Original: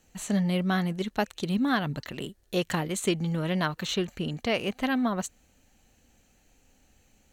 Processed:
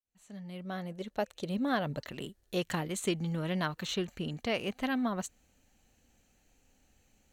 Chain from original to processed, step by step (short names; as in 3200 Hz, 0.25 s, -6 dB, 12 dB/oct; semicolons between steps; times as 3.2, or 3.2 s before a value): opening faded in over 2.05 s; 0.65–2.07 bell 560 Hz +10.5 dB 0.63 oct; gain -5 dB